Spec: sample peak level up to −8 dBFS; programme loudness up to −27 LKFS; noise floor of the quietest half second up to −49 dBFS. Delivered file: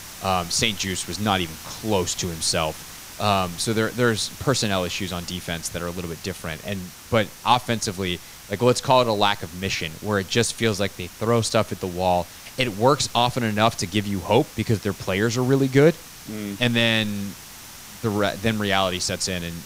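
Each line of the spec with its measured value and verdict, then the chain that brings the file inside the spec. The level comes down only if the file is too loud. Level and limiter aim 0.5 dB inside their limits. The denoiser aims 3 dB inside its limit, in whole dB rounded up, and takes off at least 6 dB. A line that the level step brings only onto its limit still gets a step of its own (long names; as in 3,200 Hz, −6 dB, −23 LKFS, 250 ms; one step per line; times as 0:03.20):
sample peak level −3.5 dBFS: out of spec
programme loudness −23.0 LKFS: out of spec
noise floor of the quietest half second −41 dBFS: out of spec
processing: broadband denoise 7 dB, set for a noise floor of −41 dBFS
level −4.5 dB
brickwall limiter −8.5 dBFS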